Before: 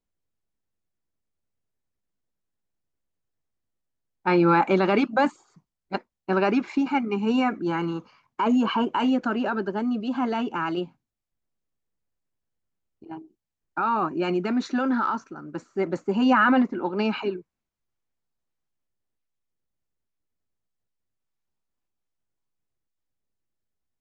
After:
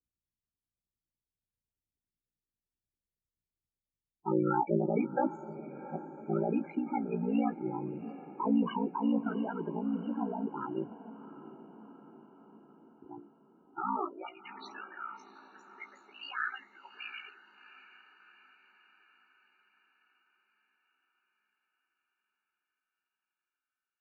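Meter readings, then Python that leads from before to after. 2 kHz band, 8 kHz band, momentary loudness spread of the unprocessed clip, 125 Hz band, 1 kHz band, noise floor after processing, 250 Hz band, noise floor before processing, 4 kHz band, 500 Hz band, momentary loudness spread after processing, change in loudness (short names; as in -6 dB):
-14.0 dB, n/a, 15 LU, -7.0 dB, -11.5 dB, under -85 dBFS, -9.5 dB, -85 dBFS, -14.5 dB, -10.0 dB, 21 LU, -10.0 dB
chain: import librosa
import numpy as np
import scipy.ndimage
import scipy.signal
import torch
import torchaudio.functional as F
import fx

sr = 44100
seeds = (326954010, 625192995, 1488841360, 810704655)

p1 = fx.peak_eq(x, sr, hz=2700.0, db=-3.0, octaves=2.5)
p2 = p1 * np.sin(2.0 * np.pi * 29.0 * np.arange(len(p1)) / sr)
p3 = fx.filter_sweep_highpass(p2, sr, from_hz=63.0, to_hz=2100.0, start_s=13.62, end_s=14.44, q=1.5)
p4 = fx.spec_topn(p3, sr, count=16)
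p5 = fx.wow_flutter(p4, sr, seeds[0], rate_hz=2.1, depth_cents=28.0)
p6 = fx.doubler(p5, sr, ms=18.0, db=-11)
p7 = p6 + fx.echo_diffused(p6, sr, ms=725, feedback_pct=56, wet_db=-14.5, dry=0)
y = p7 * librosa.db_to_amplitude(-5.5)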